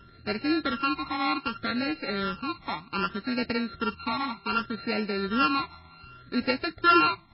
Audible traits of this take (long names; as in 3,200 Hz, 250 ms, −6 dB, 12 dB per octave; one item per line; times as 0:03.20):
a buzz of ramps at a fixed pitch in blocks of 32 samples
phaser sweep stages 12, 0.65 Hz, lowest notch 490–1,100 Hz
MP3